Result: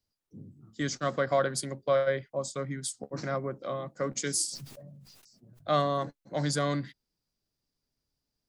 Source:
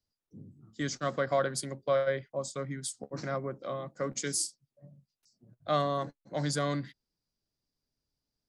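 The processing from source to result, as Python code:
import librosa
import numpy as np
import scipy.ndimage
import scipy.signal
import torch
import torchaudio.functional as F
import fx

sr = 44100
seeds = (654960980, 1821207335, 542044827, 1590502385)

y = fx.sustainer(x, sr, db_per_s=32.0, at=(4.45, 5.8))
y = y * 10.0 ** (2.0 / 20.0)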